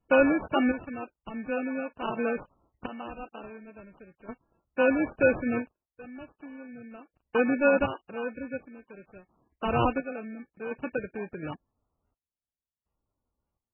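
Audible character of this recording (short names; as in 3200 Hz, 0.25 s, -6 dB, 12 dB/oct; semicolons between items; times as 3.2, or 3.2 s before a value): random-step tremolo 1.4 Hz, depth 95%; aliases and images of a low sample rate 2000 Hz, jitter 0%; MP3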